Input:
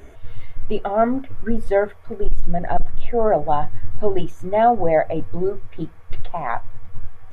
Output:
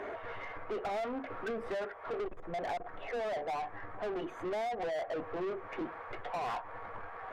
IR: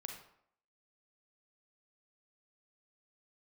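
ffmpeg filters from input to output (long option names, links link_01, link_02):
-filter_complex "[0:a]acrossover=split=320 2100:gain=0.178 1 0.1[link_01][link_02][link_03];[link_01][link_02][link_03]amix=inputs=3:normalize=0,acompressor=threshold=-30dB:ratio=16,asplit=2[link_04][link_05];[link_05]highpass=frequency=720:poles=1,volume=30dB,asoftclip=type=tanh:threshold=-21.5dB[link_06];[link_04][link_06]amix=inputs=2:normalize=0,lowpass=frequency=2200:poles=1,volume=-6dB,volume=-7.5dB"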